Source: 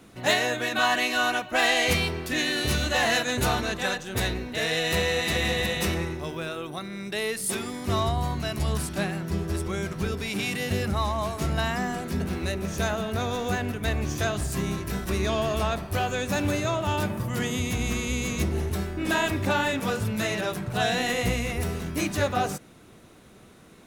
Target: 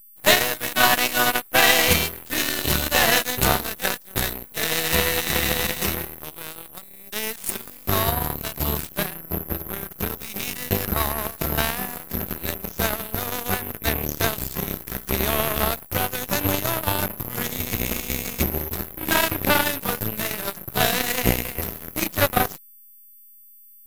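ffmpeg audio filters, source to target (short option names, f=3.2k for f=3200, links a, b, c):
-filter_complex "[0:a]asettb=1/sr,asplit=3[a][b][c];[a]atrim=end=9.144[d];[b]atrim=start=9.14:end=9.91,asetpts=PTS-STARTPTS,afade=t=in:d=0.004:c=qsin,afade=t=out:st=0.766:d=0.004:c=qsin,adynamicsmooth=sensitivity=5.5:basefreq=2.5k[e];[c]atrim=start=9.906[f];[d][e]acrossfade=d=0.004:c1=hsin:c2=qsin[g];[g][f]acrossfade=d=0.004:c1=qsin:c2=hsin,aeval=exprs='val(0)+0.0316*sin(2*PI*12000*n/s)':c=same,aeval=exprs='0.355*(cos(1*acos(clip(val(0)/0.355,-1,1)))-cos(1*PI/2))+0.0251*(cos(4*acos(clip(val(0)/0.355,-1,1)))-cos(4*PI/2))+0.0562*(cos(7*acos(clip(val(0)/0.355,-1,1)))-cos(7*PI/2))':c=same,volume=7dB"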